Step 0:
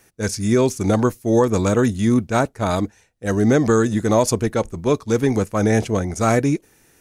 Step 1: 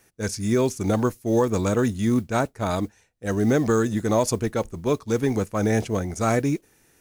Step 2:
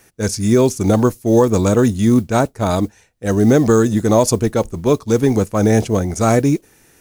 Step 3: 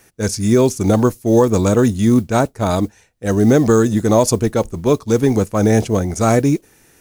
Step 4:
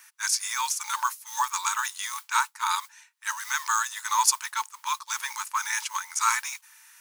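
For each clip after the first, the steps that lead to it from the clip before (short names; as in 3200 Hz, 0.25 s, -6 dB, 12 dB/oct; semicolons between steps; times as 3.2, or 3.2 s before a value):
modulation noise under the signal 32 dB; gain -4.5 dB
dynamic EQ 1900 Hz, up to -5 dB, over -41 dBFS, Q 0.87; gain +8.5 dB
nothing audible
brick-wall FIR high-pass 860 Hz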